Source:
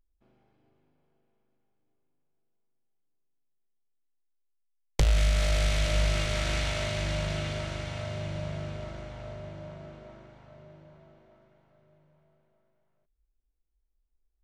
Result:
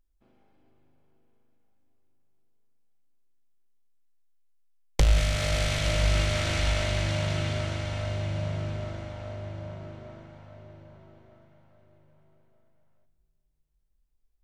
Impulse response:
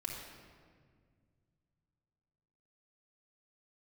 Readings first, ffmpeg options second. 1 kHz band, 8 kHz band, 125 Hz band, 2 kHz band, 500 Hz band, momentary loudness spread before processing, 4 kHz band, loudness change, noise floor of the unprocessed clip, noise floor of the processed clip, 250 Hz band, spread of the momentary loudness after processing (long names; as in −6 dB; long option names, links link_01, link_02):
+2.5 dB, +2.0 dB, +3.0 dB, +2.0 dB, +2.0 dB, 16 LU, +2.0 dB, +2.0 dB, −75 dBFS, −71 dBFS, +2.5 dB, 15 LU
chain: -filter_complex "[0:a]asplit=2[link_01][link_02];[1:a]atrim=start_sample=2205,asetrate=33516,aresample=44100[link_03];[link_02][link_03]afir=irnorm=-1:irlink=0,volume=-9.5dB[link_04];[link_01][link_04]amix=inputs=2:normalize=0"